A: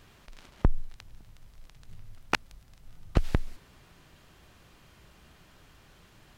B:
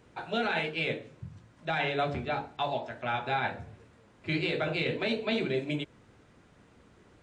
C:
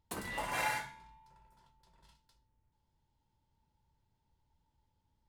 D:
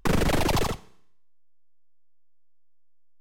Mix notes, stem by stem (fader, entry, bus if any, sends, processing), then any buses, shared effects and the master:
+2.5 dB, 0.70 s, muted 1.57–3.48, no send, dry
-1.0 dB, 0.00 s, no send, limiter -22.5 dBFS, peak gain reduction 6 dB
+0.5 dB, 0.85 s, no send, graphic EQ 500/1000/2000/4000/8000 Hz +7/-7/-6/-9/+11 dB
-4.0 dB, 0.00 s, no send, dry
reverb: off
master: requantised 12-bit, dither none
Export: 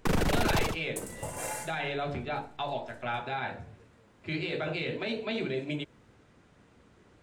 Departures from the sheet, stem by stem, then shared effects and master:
stem A: muted; master: missing requantised 12-bit, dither none

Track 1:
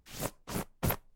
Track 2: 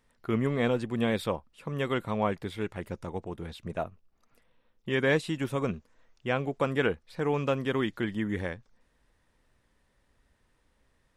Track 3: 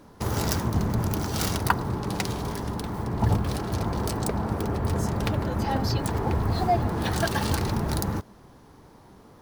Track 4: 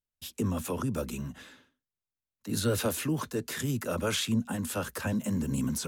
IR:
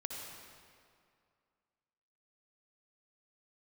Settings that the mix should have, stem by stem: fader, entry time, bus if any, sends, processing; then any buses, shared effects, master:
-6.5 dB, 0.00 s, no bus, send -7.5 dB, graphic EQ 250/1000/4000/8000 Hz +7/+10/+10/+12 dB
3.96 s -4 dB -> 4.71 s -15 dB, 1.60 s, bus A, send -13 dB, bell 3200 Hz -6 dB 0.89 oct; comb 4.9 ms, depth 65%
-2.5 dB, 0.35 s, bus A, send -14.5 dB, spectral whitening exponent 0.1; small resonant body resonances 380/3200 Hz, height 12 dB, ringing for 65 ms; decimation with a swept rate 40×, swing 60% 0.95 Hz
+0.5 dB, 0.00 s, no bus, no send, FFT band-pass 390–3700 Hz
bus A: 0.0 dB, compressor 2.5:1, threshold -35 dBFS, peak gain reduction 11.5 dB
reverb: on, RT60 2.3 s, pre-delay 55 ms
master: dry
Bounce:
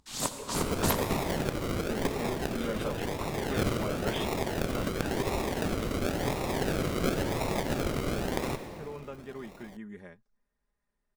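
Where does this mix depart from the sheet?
stem 2: send off; stem 4 +0.5 dB -> -6.0 dB; reverb return +6.0 dB

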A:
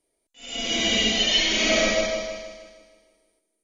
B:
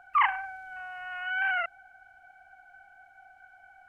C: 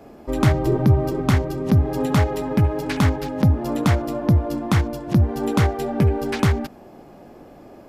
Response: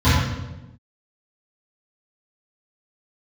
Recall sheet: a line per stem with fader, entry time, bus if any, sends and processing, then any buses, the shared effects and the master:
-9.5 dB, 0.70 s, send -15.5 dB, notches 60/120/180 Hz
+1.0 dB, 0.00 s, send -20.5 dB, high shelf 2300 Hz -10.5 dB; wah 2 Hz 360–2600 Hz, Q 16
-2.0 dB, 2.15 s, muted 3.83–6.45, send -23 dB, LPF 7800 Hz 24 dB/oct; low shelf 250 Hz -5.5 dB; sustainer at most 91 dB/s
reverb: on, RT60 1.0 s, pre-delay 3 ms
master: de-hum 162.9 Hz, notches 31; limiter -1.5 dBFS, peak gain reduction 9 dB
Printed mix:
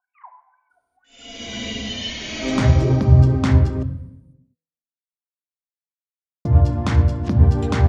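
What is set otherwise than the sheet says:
stem B +1.0 dB -> -10.0 dB; reverb return -9.0 dB

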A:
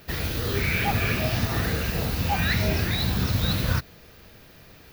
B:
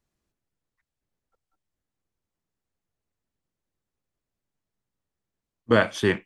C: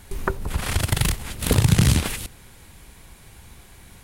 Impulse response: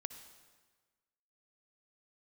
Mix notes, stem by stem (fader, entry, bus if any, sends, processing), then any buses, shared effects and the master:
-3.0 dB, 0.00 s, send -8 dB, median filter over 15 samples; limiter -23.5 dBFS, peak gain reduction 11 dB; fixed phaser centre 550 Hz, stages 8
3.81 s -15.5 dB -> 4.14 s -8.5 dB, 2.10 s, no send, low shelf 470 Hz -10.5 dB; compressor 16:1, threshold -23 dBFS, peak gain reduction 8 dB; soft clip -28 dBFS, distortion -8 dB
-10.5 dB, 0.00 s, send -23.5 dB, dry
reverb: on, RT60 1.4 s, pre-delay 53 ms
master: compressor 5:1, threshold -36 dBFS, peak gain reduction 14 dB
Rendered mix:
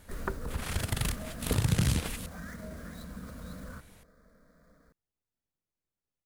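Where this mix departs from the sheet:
stem A -3.0 dB -> -9.5 dB; stem B: missing low shelf 470 Hz -10.5 dB; master: missing compressor 5:1, threshold -36 dBFS, peak gain reduction 14 dB

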